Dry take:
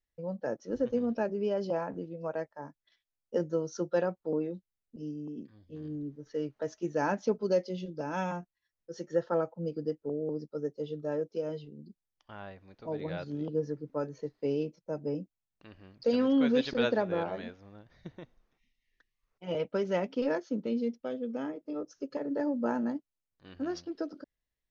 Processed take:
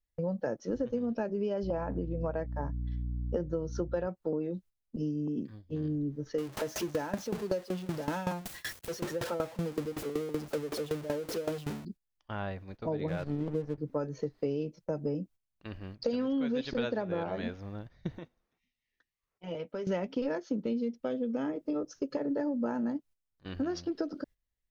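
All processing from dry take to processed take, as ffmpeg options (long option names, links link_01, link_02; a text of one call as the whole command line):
ffmpeg -i in.wav -filter_complex "[0:a]asettb=1/sr,asplit=3[link_01][link_02][link_03];[link_01]atrim=end=1.634[link_04];[link_02]atrim=start=1.63:end=4.07,asetpts=PTS-STARTPTS,afade=type=in:duration=0.004:curve=qsin,afade=type=out:start_time=2.436:duration=0.004:curve=qsin,lowpass=frequency=2500:poles=1,aeval=exprs='val(0)+0.00501*(sin(2*PI*60*n/s)+sin(2*PI*2*60*n/s)/2+sin(2*PI*3*60*n/s)/3+sin(2*PI*4*60*n/s)/4+sin(2*PI*5*60*n/s)/5)':channel_layout=same[link_05];[link_03]atrim=start=4.066[link_06];[link_04][link_05]acrossfade=duration=0.004:curve1=hsin:curve2=qsin[link_07];[link_07][link_06]acrossfade=duration=0.004:curve1=qsin:curve2=hsin,asettb=1/sr,asplit=3[link_08][link_09][link_10];[link_08]atrim=end=6.384[link_11];[link_09]atrim=start=6.38:end=11.85,asetpts=PTS-STARTPTS,afade=type=in:duration=0.004:curve=qsin,afade=type=out:start_time=5.466:duration=0.004:curve=qsin,aeval=exprs='val(0)+0.5*0.0188*sgn(val(0))':channel_layout=same,highpass=frequency=140:poles=1,aeval=exprs='val(0)*pow(10,-19*if(lt(mod(5.3*n/s,1),2*abs(5.3)/1000),1-mod(5.3*n/s,1)/(2*abs(5.3)/1000),(mod(5.3*n/s,1)-2*abs(5.3)/1000)/(1-2*abs(5.3)/1000))/20)':channel_layout=same[link_12];[link_10]atrim=start=11.846[link_13];[link_11][link_12]acrossfade=duration=0.004:curve1=hsin:curve2=qsin[link_14];[link_14][link_13]acrossfade=duration=0.004:curve1=qsin:curve2=hsin,asettb=1/sr,asplit=3[link_15][link_16][link_17];[link_15]atrim=end=13.084[link_18];[link_16]atrim=start=13.08:end=13.78,asetpts=PTS-STARTPTS,afade=type=in:duration=0.004:curve=qsin,afade=type=out:start_time=0.696:duration=0.004:curve=qsin,lowpass=2800,asubboost=boost=2.5:cutoff=160,aeval=exprs='sgn(val(0))*max(abs(val(0))-0.00335,0)':channel_layout=same[link_19];[link_17]atrim=start=13.776[link_20];[link_18][link_19]acrossfade=duration=0.004:curve1=hsin:curve2=qsin[link_21];[link_21][link_20]acrossfade=duration=0.004:curve1=qsin:curve2=hsin,asettb=1/sr,asplit=3[link_22][link_23][link_24];[link_22]atrim=end=18.184[link_25];[link_23]atrim=start=18.18:end=19.87,asetpts=PTS-STARTPTS,afade=type=in:duration=0.004:curve=qsin,afade=type=out:start_time=1.686:duration=0.004:curve=qsin,highpass=frequency=180:poles=1,acompressor=threshold=-54dB:ratio=2:attack=3.2:release=140:knee=1:detection=peak,asplit=2[link_26][link_27];[link_27]adelay=12,volume=-10.5dB[link_28];[link_26][link_28]amix=inputs=2:normalize=0,atrim=end_sample=74529[link_29];[link_24]atrim=start=19.866[link_30];[link_25][link_29]acrossfade=duration=0.004:curve1=hsin:curve2=qsin[link_31];[link_31][link_30]acrossfade=duration=0.004:curve1=qsin:curve2=hsin,agate=range=-12dB:threshold=-55dB:ratio=16:detection=peak,lowshelf=frequency=130:gain=9,acompressor=threshold=-37dB:ratio=6,volume=7.5dB" out.wav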